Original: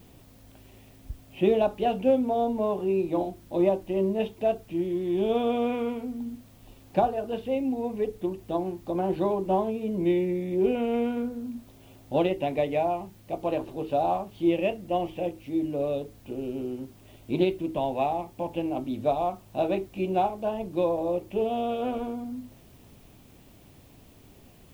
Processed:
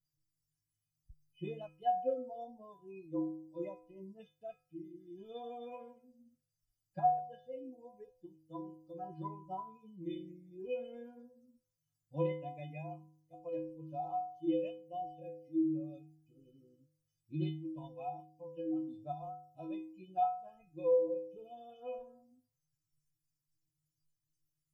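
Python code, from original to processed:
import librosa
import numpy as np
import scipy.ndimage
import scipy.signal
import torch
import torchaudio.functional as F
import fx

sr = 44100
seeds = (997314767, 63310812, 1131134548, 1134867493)

y = fx.bin_expand(x, sr, power=2.0)
y = fx.lowpass(y, sr, hz=1300.0, slope=6)
y = fx.stiff_resonator(y, sr, f0_hz=150.0, decay_s=0.84, stiffness=0.03)
y = F.gain(torch.from_numpy(y), 10.5).numpy()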